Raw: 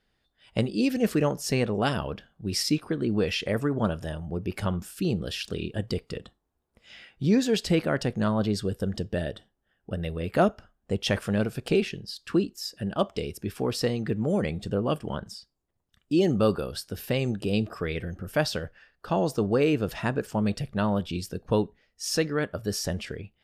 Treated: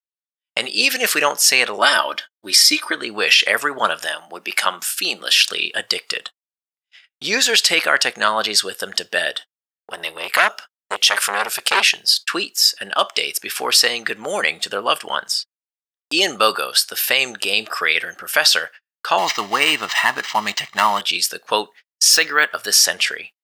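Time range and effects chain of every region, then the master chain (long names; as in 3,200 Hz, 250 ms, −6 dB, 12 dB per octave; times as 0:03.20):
0:01.79–0:02.95: notch filter 2,700 Hz, Q 7.3 + comb filter 3.3 ms, depth 75%
0:04.06–0:05.50: high-pass filter 200 Hz 24 dB per octave + parametric band 440 Hz −6 dB 0.32 octaves
0:09.91–0:12.14: high-shelf EQ 4,000 Hz +5 dB + saturating transformer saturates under 1,300 Hz
0:19.18–0:21.01: variable-slope delta modulation 64 kbit/s + comb filter 1 ms, depth 67% + linearly interpolated sample-rate reduction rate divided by 4×
0:22.13–0:22.66: notch filter 560 Hz, Q 7.3 + upward compression, threshold −30 dBFS + linearly interpolated sample-rate reduction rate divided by 2×
whole clip: noise gate −44 dBFS, range −55 dB; high-pass filter 1,400 Hz 12 dB per octave; boost into a limiter +22.5 dB; level −1 dB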